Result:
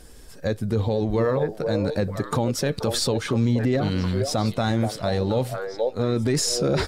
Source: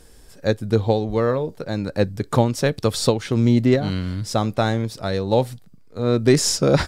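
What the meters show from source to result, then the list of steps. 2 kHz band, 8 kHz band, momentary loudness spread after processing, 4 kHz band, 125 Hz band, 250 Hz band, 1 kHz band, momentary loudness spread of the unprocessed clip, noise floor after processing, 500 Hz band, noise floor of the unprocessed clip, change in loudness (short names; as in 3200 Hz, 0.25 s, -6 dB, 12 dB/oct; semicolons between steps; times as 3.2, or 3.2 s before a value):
-3.0 dB, -2.0 dB, 5 LU, -1.5 dB, -2.5 dB, -3.5 dB, -3.5 dB, 9 LU, -43 dBFS, -3.5 dB, -47 dBFS, -3.0 dB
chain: bin magnitudes rounded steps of 15 dB; delay with a stepping band-pass 0.477 s, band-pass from 560 Hz, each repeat 1.4 oct, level -6 dB; limiter -16 dBFS, peak gain reduction 11.5 dB; gain +2 dB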